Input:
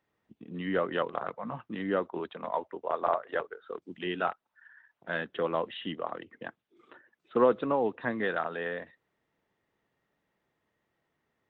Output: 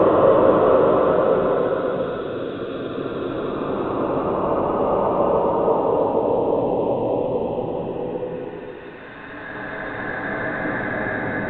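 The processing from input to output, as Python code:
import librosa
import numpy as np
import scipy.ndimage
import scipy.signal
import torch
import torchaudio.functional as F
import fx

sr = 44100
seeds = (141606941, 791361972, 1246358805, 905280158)

y = fx.whisperise(x, sr, seeds[0])
y = fx.paulstretch(y, sr, seeds[1], factor=17.0, window_s=0.25, from_s=7.44)
y = F.gain(torch.from_numpy(y), 7.0).numpy()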